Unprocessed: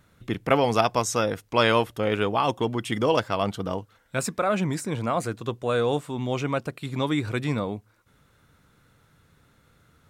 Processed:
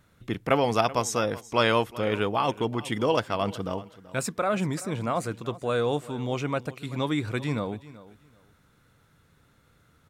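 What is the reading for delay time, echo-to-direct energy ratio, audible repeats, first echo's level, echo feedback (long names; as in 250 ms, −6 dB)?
382 ms, −18.0 dB, 2, −18.0 dB, 20%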